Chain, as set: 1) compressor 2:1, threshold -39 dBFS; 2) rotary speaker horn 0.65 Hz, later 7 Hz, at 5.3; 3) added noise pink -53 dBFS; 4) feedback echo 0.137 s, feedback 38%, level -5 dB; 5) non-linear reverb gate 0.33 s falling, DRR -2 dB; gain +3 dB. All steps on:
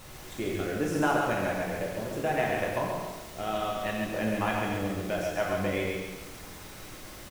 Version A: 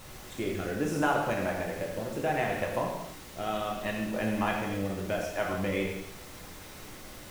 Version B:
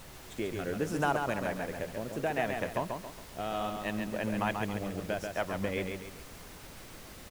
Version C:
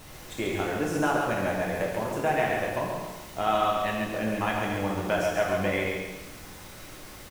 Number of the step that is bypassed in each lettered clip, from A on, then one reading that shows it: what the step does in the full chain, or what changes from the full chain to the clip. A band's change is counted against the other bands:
4, echo-to-direct 4.0 dB to 2.0 dB; 5, echo-to-direct 4.0 dB to -4.5 dB; 2, 1 kHz band +1.5 dB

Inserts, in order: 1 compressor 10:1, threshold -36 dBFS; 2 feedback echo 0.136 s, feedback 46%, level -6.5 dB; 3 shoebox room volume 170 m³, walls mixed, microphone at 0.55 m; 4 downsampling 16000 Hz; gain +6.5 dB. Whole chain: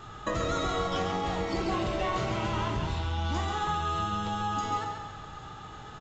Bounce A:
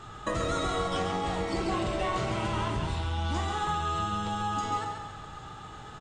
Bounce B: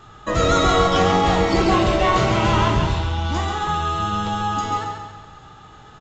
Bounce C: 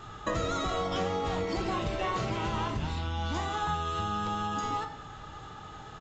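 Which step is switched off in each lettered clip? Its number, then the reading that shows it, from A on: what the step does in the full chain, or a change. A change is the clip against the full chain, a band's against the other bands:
4, 8 kHz band +1.5 dB; 1, mean gain reduction 8.0 dB; 2, momentary loudness spread change +1 LU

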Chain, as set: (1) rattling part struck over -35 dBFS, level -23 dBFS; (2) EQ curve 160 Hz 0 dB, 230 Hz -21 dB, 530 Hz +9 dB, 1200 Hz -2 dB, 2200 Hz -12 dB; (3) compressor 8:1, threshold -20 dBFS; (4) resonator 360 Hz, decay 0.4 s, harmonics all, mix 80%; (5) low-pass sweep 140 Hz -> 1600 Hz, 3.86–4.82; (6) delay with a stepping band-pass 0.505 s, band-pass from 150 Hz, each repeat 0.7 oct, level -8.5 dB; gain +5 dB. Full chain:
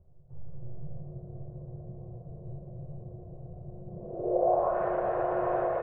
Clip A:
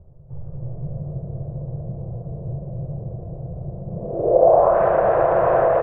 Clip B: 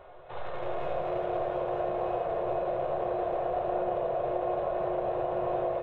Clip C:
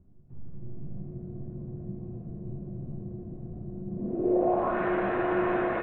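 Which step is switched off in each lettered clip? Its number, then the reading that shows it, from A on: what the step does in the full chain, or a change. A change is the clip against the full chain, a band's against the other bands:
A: 4, 250 Hz band -4.5 dB; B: 5, 125 Hz band -7.0 dB; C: 2, 2 kHz band +8.0 dB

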